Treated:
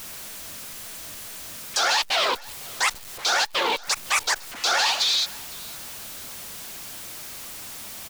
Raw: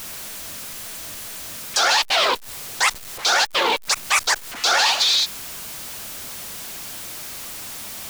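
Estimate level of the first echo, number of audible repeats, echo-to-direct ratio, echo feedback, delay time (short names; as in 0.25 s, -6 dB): -23.0 dB, 2, -22.0 dB, 43%, 0.507 s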